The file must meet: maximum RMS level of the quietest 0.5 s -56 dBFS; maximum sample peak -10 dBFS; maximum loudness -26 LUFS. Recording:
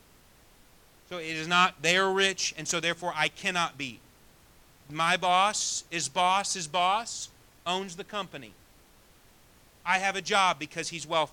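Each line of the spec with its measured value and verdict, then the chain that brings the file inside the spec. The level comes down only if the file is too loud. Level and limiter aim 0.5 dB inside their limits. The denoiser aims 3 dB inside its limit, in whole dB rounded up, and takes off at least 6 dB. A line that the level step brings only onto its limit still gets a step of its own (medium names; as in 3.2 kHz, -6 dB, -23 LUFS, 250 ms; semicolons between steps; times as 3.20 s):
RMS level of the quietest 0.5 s -58 dBFS: pass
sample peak -8.0 dBFS: fail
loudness -27.5 LUFS: pass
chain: peak limiter -10.5 dBFS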